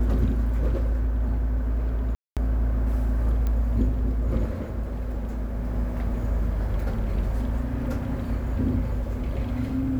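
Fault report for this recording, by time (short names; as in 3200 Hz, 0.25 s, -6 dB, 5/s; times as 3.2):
2.15–2.37 gap 0.217 s
3.47 pop -17 dBFS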